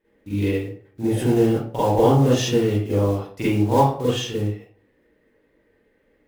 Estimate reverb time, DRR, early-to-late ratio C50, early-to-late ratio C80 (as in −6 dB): 0.45 s, −10.5 dB, −1.5 dB, 5.0 dB